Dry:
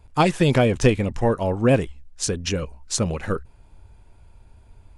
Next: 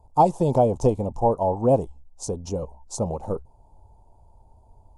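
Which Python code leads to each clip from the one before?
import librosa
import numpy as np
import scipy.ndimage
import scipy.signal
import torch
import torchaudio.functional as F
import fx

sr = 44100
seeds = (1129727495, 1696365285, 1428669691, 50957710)

y = fx.curve_eq(x, sr, hz=(350.0, 890.0, 1700.0, 6400.0), db=(0, 11, -29, -4))
y = y * 10.0 ** (-4.5 / 20.0)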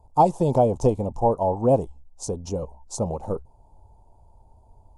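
y = x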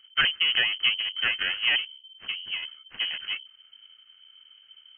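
y = fx.lower_of_two(x, sr, delay_ms=0.66)
y = fx.wow_flutter(y, sr, seeds[0], rate_hz=2.1, depth_cents=27.0)
y = fx.freq_invert(y, sr, carrier_hz=3100)
y = y * 10.0 ** (-2.5 / 20.0)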